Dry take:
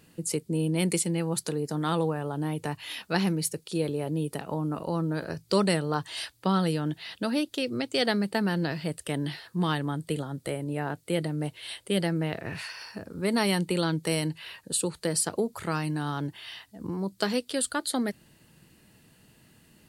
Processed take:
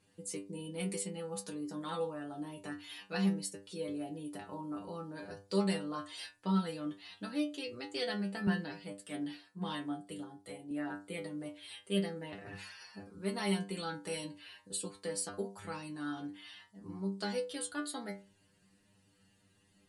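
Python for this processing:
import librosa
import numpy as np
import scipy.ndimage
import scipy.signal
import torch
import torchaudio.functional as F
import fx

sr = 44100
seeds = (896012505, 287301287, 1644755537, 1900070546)

y = scipy.signal.sosfilt(scipy.signal.butter(12, 11000.0, 'lowpass', fs=sr, output='sos'), x)
y = fx.stiff_resonator(y, sr, f0_hz=97.0, decay_s=0.37, stiffness=0.002)
y = fx.band_widen(y, sr, depth_pct=70, at=(8.47, 10.71))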